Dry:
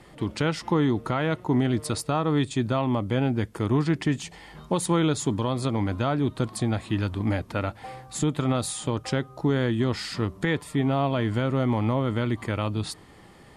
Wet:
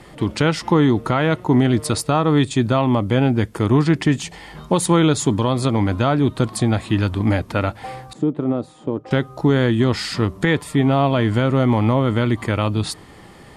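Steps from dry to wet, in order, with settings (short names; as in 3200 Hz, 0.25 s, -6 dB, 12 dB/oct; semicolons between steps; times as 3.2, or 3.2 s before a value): 8.13–9.11 band-pass 340 Hz, Q 1.2; gain +7.5 dB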